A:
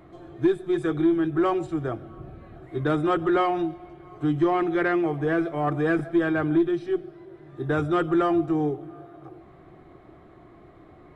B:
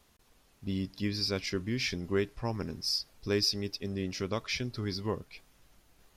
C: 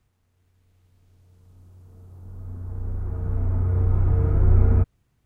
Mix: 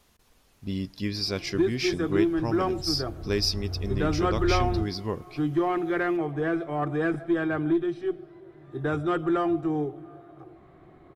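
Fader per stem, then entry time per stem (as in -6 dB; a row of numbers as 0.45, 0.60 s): -3.0, +2.5, -12.0 dB; 1.15, 0.00, 0.00 s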